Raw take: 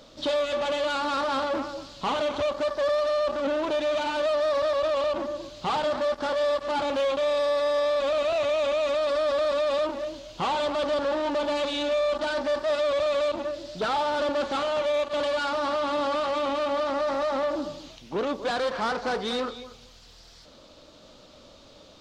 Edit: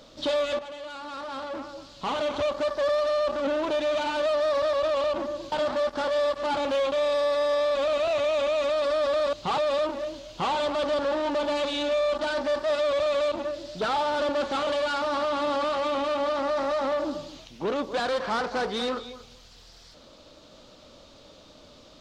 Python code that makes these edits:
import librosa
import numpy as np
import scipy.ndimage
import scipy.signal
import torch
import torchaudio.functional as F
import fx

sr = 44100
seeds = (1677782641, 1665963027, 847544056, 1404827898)

y = fx.edit(x, sr, fx.fade_in_from(start_s=0.59, length_s=1.77, curve='qua', floor_db=-12.5),
    fx.move(start_s=5.52, length_s=0.25, to_s=9.58),
    fx.cut(start_s=14.67, length_s=0.51), tone=tone)